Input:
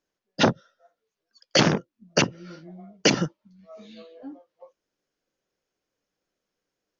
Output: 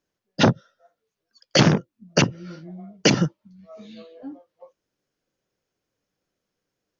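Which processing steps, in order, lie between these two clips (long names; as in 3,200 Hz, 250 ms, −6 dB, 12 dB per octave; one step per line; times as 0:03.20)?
parametric band 110 Hz +7.5 dB 1.7 octaves
level +1 dB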